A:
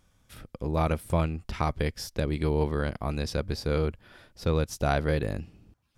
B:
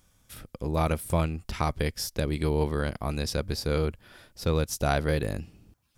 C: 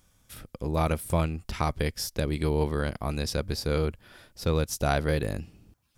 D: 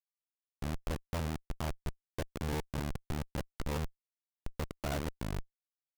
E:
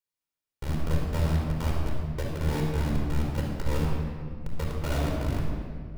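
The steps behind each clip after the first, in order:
high-shelf EQ 5,900 Hz +10 dB
no processing that can be heard
gate pattern "x.xx.x.x.x" 121 BPM; comparator with hysteresis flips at −27.5 dBFS; level −2 dB
rectangular room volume 3,900 cubic metres, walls mixed, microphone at 4.6 metres

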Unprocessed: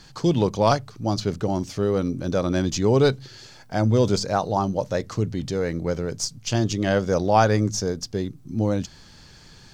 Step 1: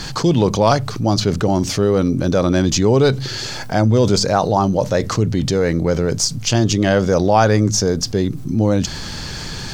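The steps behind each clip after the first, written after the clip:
envelope flattener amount 50%
level +3 dB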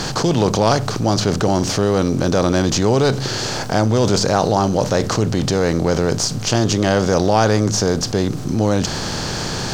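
compressor on every frequency bin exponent 0.6
level −4 dB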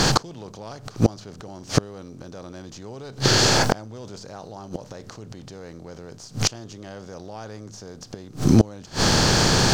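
gate with flip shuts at −9 dBFS, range −28 dB
level +5.5 dB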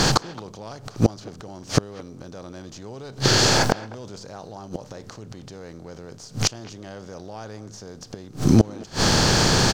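far-end echo of a speakerphone 220 ms, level −18 dB

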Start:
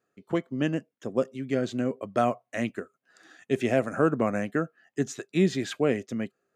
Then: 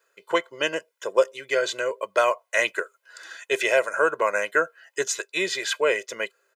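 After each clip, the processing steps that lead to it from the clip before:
speech leveller within 3 dB 0.5 s
high-pass filter 800 Hz 12 dB per octave
comb filter 2 ms, depth 91%
level +9 dB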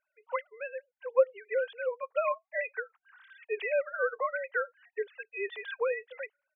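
three sine waves on the formant tracks
level −8 dB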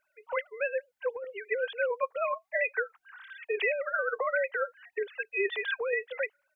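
compressor whose output falls as the input rises −33 dBFS, ratio −1
level +4.5 dB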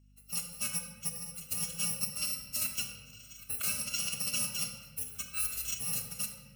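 samples in bit-reversed order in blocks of 128 samples
rectangular room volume 1,100 cubic metres, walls mixed, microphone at 1.3 metres
mains hum 50 Hz, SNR 25 dB
level −5.5 dB

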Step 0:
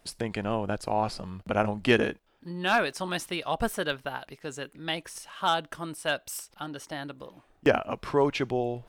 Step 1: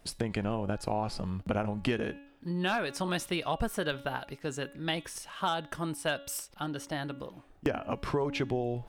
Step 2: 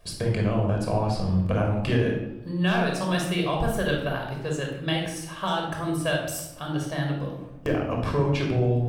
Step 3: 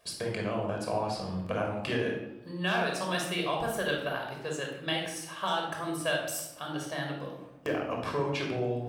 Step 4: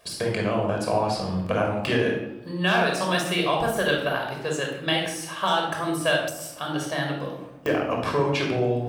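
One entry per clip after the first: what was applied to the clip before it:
low-shelf EQ 290 Hz +6 dB; hum removal 281.2 Hz, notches 14; downward compressor 12 to 1, threshold −26 dBFS, peak gain reduction 12.5 dB
rectangular room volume 2,700 cubic metres, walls furnished, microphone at 5.6 metres
high-pass filter 450 Hz 6 dB per octave; level −2 dB
de-essing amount 80%; level +7.5 dB

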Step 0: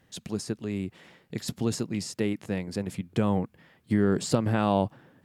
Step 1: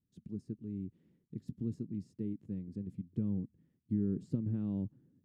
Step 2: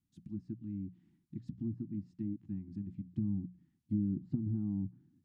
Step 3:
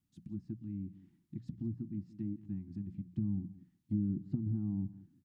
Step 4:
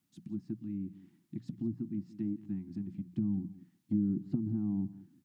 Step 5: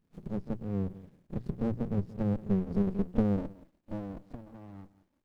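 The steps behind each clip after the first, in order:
noise gate −59 dBFS, range −10 dB; drawn EQ curve 270 Hz 0 dB, 400 Hz −8 dB, 700 Hz −27 dB; level −8 dB
Chebyshev band-stop filter 340–740 Hz, order 3; treble cut that deepens with the level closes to 630 Hz, closed at −32.5 dBFS; mains-hum notches 60/120/180 Hz; level +1 dB
single-tap delay 177 ms −18 dB; dynamic equaliser 270 Hz, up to −3 dB, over −47 dBFS, Q 1.7; level +1 dB
Bessel high-pass filter 220 Hz, order 2; level +7 dB
echo ahead of the sound 31 ms −14 dB; high-pass filter sweep 63 Hz → 790 Hz, 0:01.57–0:04.55; windowed peak hold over 65 samples; level +6 dB

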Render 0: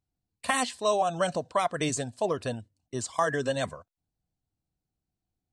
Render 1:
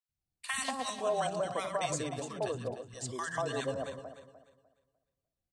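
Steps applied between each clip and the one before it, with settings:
feedback delay that plays each chunk backwards 150 ms, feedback 51%, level −7.5 dB
three-band delay without the direct sound highs, lows, mids 90/190 ms, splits 260/1,100 Hz
level −5.5 dB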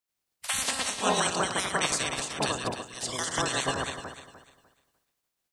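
ceiling on every frequency bin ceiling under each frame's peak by 25 dB
level +6 dB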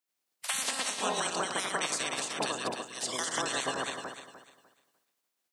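high-pass filter 210 Hz 12 dB per octave
downward compressor 3 to 1, threshold −29 dBFS, peak gain reduction 7 dB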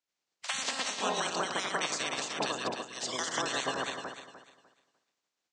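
Butterworth low-pass 7,400 Hz 36 dB per octave

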